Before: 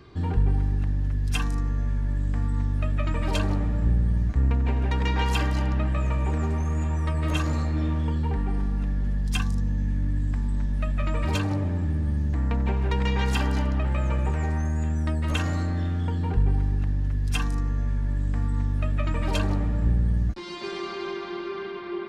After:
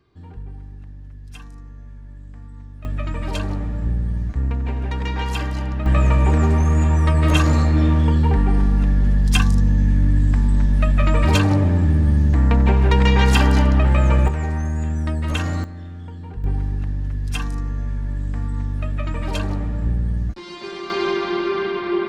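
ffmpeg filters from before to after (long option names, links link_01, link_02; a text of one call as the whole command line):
ffmpeg -i in.wav -af "asetnsamples=nb_out_samples=441:pad=0,asendcmd='2.85 volume volume 0dB;5.86 volume volume 9.5dB;14.28 volume volume 3dB;15.64 volume volume -8dB;16.44 volume volume 1dB;20.9 volume volume 11dB',volume=-13dB" out.wav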